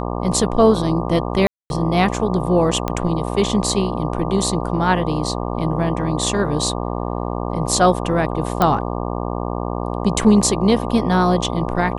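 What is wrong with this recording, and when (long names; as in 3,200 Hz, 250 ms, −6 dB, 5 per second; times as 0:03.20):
mains buzz 60 Hz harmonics 20 −24 dBFS
0:01.47–0:01.70: drop-out 231 ms
0:02.88: click −8 dBFS
0:08.62: click −4 dBFS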